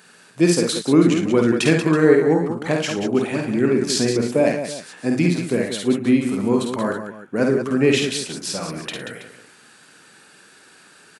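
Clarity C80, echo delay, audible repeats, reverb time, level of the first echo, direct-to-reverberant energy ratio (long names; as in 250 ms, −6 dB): no reverb audible, 51 ms, 4, no reverb audible, −4.5 dB, no reverb audible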